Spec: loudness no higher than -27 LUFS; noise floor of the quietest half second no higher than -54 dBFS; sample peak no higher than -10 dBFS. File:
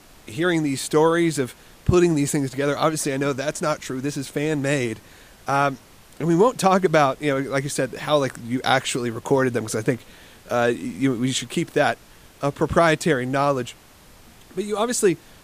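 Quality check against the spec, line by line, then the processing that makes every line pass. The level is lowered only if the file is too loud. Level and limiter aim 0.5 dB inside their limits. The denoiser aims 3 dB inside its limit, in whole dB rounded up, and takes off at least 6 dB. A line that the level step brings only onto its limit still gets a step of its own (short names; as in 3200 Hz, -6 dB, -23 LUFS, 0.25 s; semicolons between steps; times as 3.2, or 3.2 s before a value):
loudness -22.0 LUFS: fail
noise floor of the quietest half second -49 dBFS: fail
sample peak -4.5 dBFS: fail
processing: gain -5.5 dB; limiter -10.5 dBFS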